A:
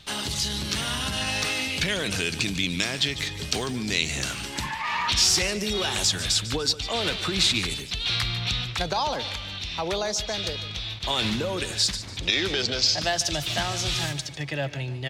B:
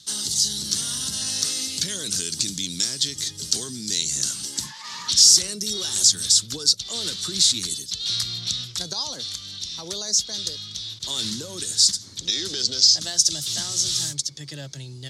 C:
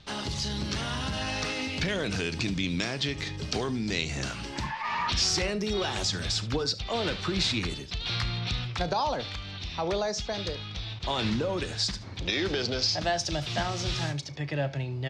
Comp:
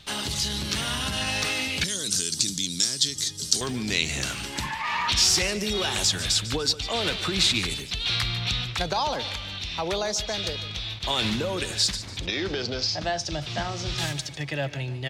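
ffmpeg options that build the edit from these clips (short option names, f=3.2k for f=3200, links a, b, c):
-filter_complex "[0:a]asplit=3[a][b][c];[a]atrim=end=1.842[d];[1:a]atrim=start=1.838:end=3.612[e];[b]atrim=start=3.608:end=12.262[f];[2:a]atrim=start=12.258:end=13.982[g];[c]atrim=start=13.978[h];[d][e]acrossfade=d=0.004:c1=hsin:c2=hsin[i];[i][f]acrossfade=d=0.004:c1=hsin:c2=hsin[j];[j][g]acrossfade=d=0.004:c1=hsin:c2=hsin[k];[k][h]acrossfade=d=0.004:c1=hsin:c2=hsin"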